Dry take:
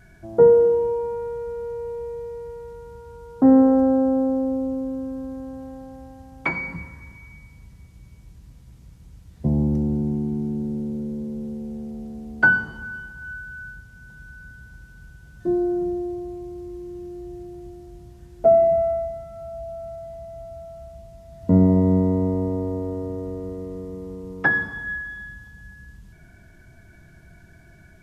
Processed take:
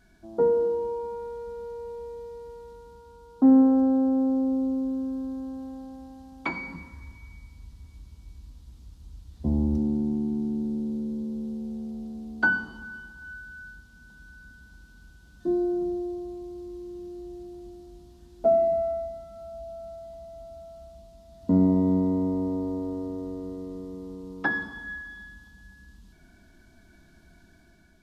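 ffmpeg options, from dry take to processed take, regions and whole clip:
ffmpeg -i in.wav -filter_complex "[0:a]asettb=1/sr,asplit=3[link_01][link_02][link_03];[link_01]atrim=end=6.934[link_04];[link_02]atrim=start=6.93:end=9.78,asetpts=PTS-STARTPTS,afade=type=in:duration=0.004:curve=qsin,afade=type=out:start_time=2.846:duration=0.004:curve=qsin,lowshelf=frequency=130:width_type=q:width=1.5:gain=7,aecho=1:1:904:0.15,atrim=end_sample=125685[link_05];[link_03]atrim=start=9.776[link_06];[link_04][link_05]acrossfade=duration=0.004:curve1=hsin:curve2=qsin[link_07];[link_07][link_06]acrossfade=duration=0.004:curve1=qsin:curve2=hsin,equalizer=frequency=125:width_type=o:width=1:gain=-12,equalizer=frequency=250:width_type=o:width=1:gain=8,equalizer=frequency=500:width_type=o:width=1:gain=-4,equalizer=frequency=1000:width_type=o:width=1:gain=3,equalizer=frequency=2000:width_type=o:width=1:gain=-6,equalizer=frequency=4000:width_type=o:width=1:gain=8,dynaudnorm=framelen=230:gausssize=5:maxgain=3dB,volume=-7.5dB" out.wav

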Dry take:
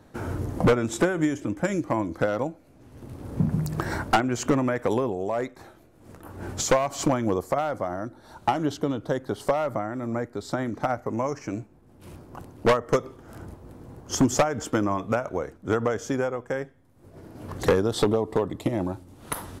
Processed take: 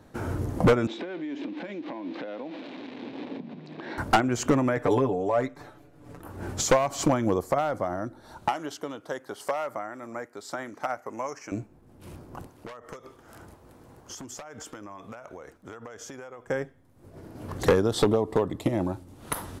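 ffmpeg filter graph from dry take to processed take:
ffmpeg -i in.wav -filter_complex "[0:a]asettb=1/sr,asplit=3[link_01][link_02][link_03];[link_01]atrim=end=0.874[link_04];[link_02]atrim=start=0.87:end=3.98,asetpts=PTS-STARTPTS,afade=type=in:duration=0.004:curve=qsin,afade=type=out:start_time=3.106:duration=0.004:curve=qsin,aeval=exprs='val(0)+0.5*0.0178*sgn(val(0))':channel_layout=same,acompressor=threshold=-31dB:ratio=20:attack=3.2:release=140:knee=1:detection=peak,highpass=frequency=220:width=0.5412,highpass=frequency=220:width=1.3066,equalizer=frequency=270:width_type=q:width=4:gain=5,equalizer=frequency=1300:width_type=q:width=4:gain=-7,equalizer=frequency=2400:width_type=q:width=4:gain=4,equalizer=frequency=3800:width_type=q:width=4:gain=6,lowpass=frequency=4000:width=0.5412,lowpass=frequency=4000:width=1.3066[link_05];[link_03]atrim=start=3.976[link_06];[link_04][link_05]acrossfade=duration=0.004:curve1=hsin:curve2=qsin[link_07];[link_07][link_06]acrossfade=duration=0.004:curve1=qsin:curve2=hsin,asettb=1/sr,asplit=3[link_08][link_09][link_10];[link_08]atrim=end=4.764[link_11];[link_09]atrim=start=4.76:end=6.21,asetpts=PTS-STARTPTS,afade=type=in:duration=0.004:curve=qsin,afade=type=out:start_time=1.446:duration=0.004:curve=qsin,highshelf=frequency=5200:gain=-7.5,aecho=1:1:6.9:0.79,atrim=end_sample=63945[link_12];[link_10]atrim=start=6.206[link_13];[link_11][link_12]acrossfade=duration=0.004:curve1=hsin:curve2=qsin[link_14];[link_14][link_13]acrossfade=duration=0.004:curve1=qsin:curve2=hsin,asettb=1/sr,asplit=3[link_15][link_16][link_17];[link_15]atrim=end=8.484[link_18];[link_16]atrim=start=8.48:end=11.52,asetpts=PTS-STARTPTS,afade=type=in:duration=0.004:curve=qsin,afade=type=out:start_time=3.036:duration=0.004:curve=qsin,highpass=frequency=980:poles=1,equalizer=frequency=3800:width_type=o:width=0.43:gain=-5.5[link_19];[link_17]atrim=start=11.516[link_20];[link_18][link_19]acrossfade=duration=0.004:curve1=hsin:curve2=qsin[link_21];[link_21][link_20]acrossfade=duration=0.004:curve1=qsin:curve2=hsin,asettb=1/sr,asplit=3[link_22][link_23][link_24];[link_22]atrim=end=12.474[link_25];[link_23]atrim=start=12.47:end=16.47,asetpts=PTS-STARTPTS,afade=type=in:duration=0.004:curve=qsin,afade=type=out:start_time=3.996:duration=0.004:curve=qsin,lowshelf=frequency=480:gain=-10.5,acompressor=threshold=-37dB:ratio=16:attack=3.2:release=140:knee=1:detection=peak[link_26];[link_24]atrim=start=16.466[link_27];[link_25][link_26]acrossfade=duration=0.004:curve1=hsin:curve2=qsin[link_28];[link_28][link_27]acrossfade=duration=0.004:curve1=qsin:curve2=hsin" out.wav

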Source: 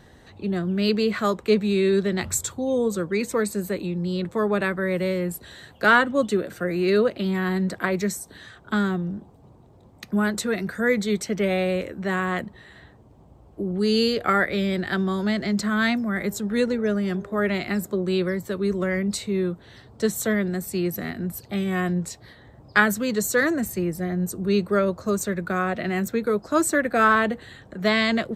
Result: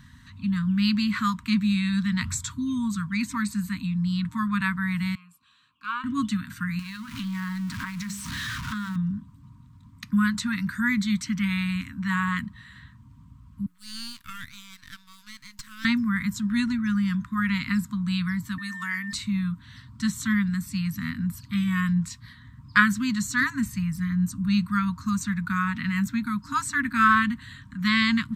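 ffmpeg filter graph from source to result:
ffmpeg -i in.wav -filter_complex "[0:a]asettb=1/sr,asplit=3[link_01][link_02][link_03];[link_01]atrim=end=5.154[link_04];[link_02]atrim=start=5.15:end=6.04,asetpts=PTS-STARTPTS,afade=type=in:duration=0.004:curve=qsin,afade=type=out:start_time=0.886:duration=0.004:curve=qsin,asplit=3[link_05][link_06][link_07];[link_05]bandpass=frequency=730:width_type=q:width=8,volume=0dB[link_08];[link_06]bandpass=frequency=1090:width_type=q:width=8,volume=-6dB[link_09];[link_07]bandpass=frequency=2440:width_type=q:width=8,volume=-9dB[link_10];[link_08][link_09][link_10]amix=inputs=3:normalize=0,highshelf=frequency=4700:gain=10[link_11];[link_03]atrim=start=6.036[link_12];[link_04][link_11]acrossfade=duration=0.004:curve1=hsin:curve2=qsin[link_13];[link_13][link_12]acrossfade=duration=0.004:curve1=qsin:curve2=hsin,asettb=1/sr,asplit=3[link_14][link_15][link_16];[link_14]atrim=end=6.794[link_17];[link_15]atrim=start=6.79:end=8.96,asetpts=PTS-STARTPTS,afade=type=in:duration=0.004:curve=qsin,afade=type=out:start_time=2.166:duration=0.004:curve=qsin,aeval=exprs='val(0)+0.5*0.0422*sgn(val(0))':channel_layout=same,bandreject=frequency=50:width_type=h:width=6,bandreject=frequency=100:width_type=h:width=6,bandreject=frequency=150:width_type=h:width=6,bandreject=frequency=200:width_type=h:width=6,bandreject=frequency=250:width_type=h:width=6,bandreject=frequency=300:width_type=h:width=6,bandreject=frequency=350:width_type=h:width=6,bandreject=frequency=400:width_type=h:width=6,bandreject=frequency=450:width_type=h:width=6,acompressor=threshold=-29dB:ratio=6:attack=3.2:release=140:knee=1:detection=peak[link_18];[link_16]atrim=start=8.956[link_19];[link_17][link_18]acrossfade=duration=0.004:curve1=hsin:curve2=qsin[link_20];[link_20][link_19]acrossfade=duration=0.004:curve1=qsin:curve2=hsin,asettb=1/sr,asplit=3[link_21][link_22][link_23];[link_21]atrim=end=13.664[link_24];[link_22]atrim=start=13.66:end=15.85,asetpts=PTS-STARTPTS,afade=type=in:duration=0.004:curve=qsin,afade=type=out:start_time=2.186:duration=0.004:curve=qsin,aderivative,aeval=exprs='max(val(0),0)':channel_layout=same[link_25];[link_23]atrim=start=15.846[link_26];[link_24][link_25]acrossfade=duration=0.004:curve1=hsin:curve2=qsin[link_27];[link_27][link_26]acrossfade=duration=0.004:curve1=qsin:curve2=hsin,asettb=1/sr,asplit=3[link_28][link_29][link_30];[link_28]atrim=end=18.584[link_31];[link_29]atrim=start=18.58:end=19.13,asetpts=PTS-STARTPTS,afade=type=in:duration=0.004:curve=qsin,afade=type=out:start_time=0.546:duration=0.004:curve=qsin,highpass=390,equalizer=frequency=11000:width_type=o:width=1.5:gain=7,aeval=exprs='val(0)+0.0178*sin(2*PI*1800*n/s)':channel_layout=same[link_32];[link_30]atrim=start=19.126[link_33];[link_31][link_32]acrossfade=duration=0.004:curve1=hsin:curve2=qsin[link_34];[link_34][link_33]acrossfade=duration=0.004:curve1=qsin:curve2=hsin,acrossover=split=7200[link_35][link_36];[link_36]acompressor=threshold=-46dB:ratio=4:attack=1:release=60[link_37];[link_35][link_37]amix=inputs=2:normalize=0,afftfilt=real='re*(1-between(b*sr/4096,280,920))':imag='im*(1-between(b*sr/4096,280,920))':win_size=4096:overlap=0.75,equalizer=frequency=110:width=1.2:gain=4.5" out.wav

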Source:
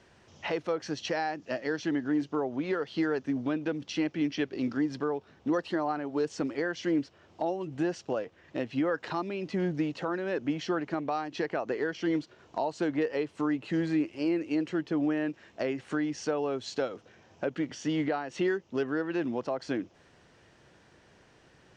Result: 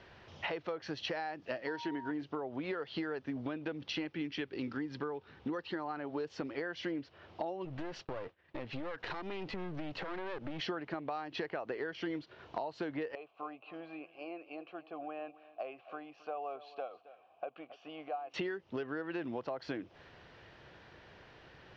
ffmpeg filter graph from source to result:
ffmpeg -i in.wav -filter_complex "[0:a]asettb=1/sr,asplit=3[link_01][link_02][link_03];[link_01]atrim=end=1.674[link_04];[link_02]atrim=start=1.67:end=2.11,asetpts=PTS-STARTPTS,afade=type=in:duration=0.004:curve=qsin,afade=type=out:start_time=0.436:duration=0.004:curve=qsin,aeval=exprs='val(0)+0.0178*sin(2*PI*940*n/s)':channel_layout=same,aecho=1:1:2.7:0.38,atrim=end_sample=19404[link_05];[link_03]atrim=start=2.106[link_06];[link_04][link_05]acrossfade=duration=0.004:curve1=hsin:curve2=qsin[link_07];[link_07][link_06]acrossfade=duration=0.004:curve1=qsin:curve2=hsin,asettb=1/sr,asplit=3[link_08][link_09][link_10];[link_08]atrim=end=4.054[link_11];[link_09]atrim=start=4.05:end=6,asetpts=PTS-STARTPTS,afade=type=in:duration=0.004:curve=qsin,afade=type=out:start_time=1.946:duration=0.004:curve=qsin,equalizer=frequency=650:width_type=o:width=0.29:gain=-9.5,bandreject=frequency=1100:width=24[link_12];[link_10]atrim=start=5.996[link_13];[link_11][link_12]acrossfade=duration=0.004:curve1=hsin:curve2=qsin[link_14];[link_14][link_13]acrossfade=duration=0.004:curve1=qsin:curve2=hsin,asettb=1/sr,asplit=3[link_15][link_16][link_17];[link_15]atrim=end=7.654[link_18];[link_16]atrim=start=7.65:end=10.6,asetpts=PTS-STARTPTS,afade=type=in:duration=0.004:curve=qsin,afade=type=out:start_time=2.946:duration=0.004:curve=qsin,agate=range=-33dB:threshold=-49dB:ratio=3:release=100:detection=peak,acompressor=threshold=-35dB:ratio=3:attack=3.2:release=140:knee=1:detection=peak,aeval=exprs='clip(val(0),-1,0.00501)':channel_layout=same[link_19];[link_17]atrim=start=10.596[link_20];[link_18][link_19]acrossfade=duration=0.004:curve1=hsin:curve2=qsin[link_21];[link_21][link_20]acrossfade=duration=0.004:curve1=qsin:curve2=hsin,asettb=1/sr,asplit=3[link_22][link_23][link_24];[link_22]atrim=end=13.154[link_25];[link_23]atrim=start=13.15:end=18.34,asetpts=PTS-STARTPTS,afade=type=in:duration=0.004:curve=qsin,afade=type=out:start_time=5.186:duration=0.004:curve=qsin,asplit=3[link_26][link_27][link_28];[link_26]bandpass=frequency=730:width_type=q:width=8,volume=0dB[link_29];[link_27]bandpass=frequency=1090:width_type=q:width=8,volume=-6dB[link_30];[link_28]bandpass=frequency=2440:width_type=q:width=8,volume=-9dB[link_31];[link_29][link_30][link_31]amix=inputs=3:normalize=0,aecho=1:1:271:0.126,atrim=end_sample=228879[link_32];[link_24]atrim=start=18.336[link_33];[link_25][link_32]acrossfade=duration=0.004:curve1=hsin:curve2=qsin[link_34];[link_34][link_33]acrossfade=duration=0.004:curve1=qsin:curve2=hsin,lowpass=frequency=4400:width=0.5412,lowpass=frequency=4400:width=1.3066,equalizer=frequency=230:width_type=o:width=1.5:gain=-5.5,acompressor=threshold=-40dB:ratio=6,volume=4.5dB" out.wav

